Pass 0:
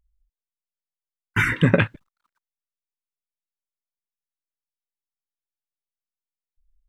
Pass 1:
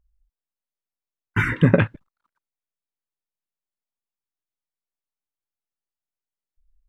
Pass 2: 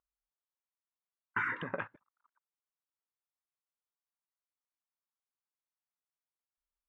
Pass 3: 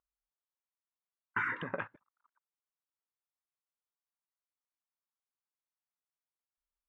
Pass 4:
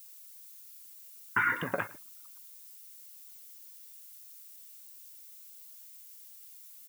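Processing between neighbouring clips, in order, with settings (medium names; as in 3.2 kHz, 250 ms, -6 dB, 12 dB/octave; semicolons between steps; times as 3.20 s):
treble shelf 2.1 kHz -11 dB; trim +2 dB
compression 6:1, threshold -22 dBFS, peak gain reduction 12.5 dB; band-pass filter 1.1 kHz, Q 1.6
no audible change
added noise violet -57 dBFS; feedback comb 710 Hz, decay 0.18 s, harmonics all, mix 70%; on a send: delay 108 ms -21 dB; on the sum: trim +14.5 dB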